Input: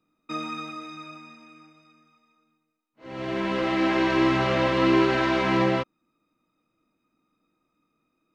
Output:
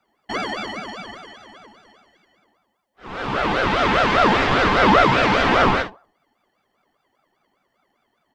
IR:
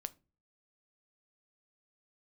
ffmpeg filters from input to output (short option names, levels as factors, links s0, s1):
-filter_complex "[0:a]aecho=1:1:48|66:0.335|0.133,asplit=2[s0][s1];[1:a]atrim=start_sample=2205[s2];[s1][s2]afir=irnorm=-1:irlink=0,volume=3.35[s3];[s0][s3]amix=inputs=2:normalize=0,aeval=exprs='val(0)*sin(2*PI*790*n/s+790*0.35/5*sin(2*PI*5*n/s))':c=same,volume=0.75"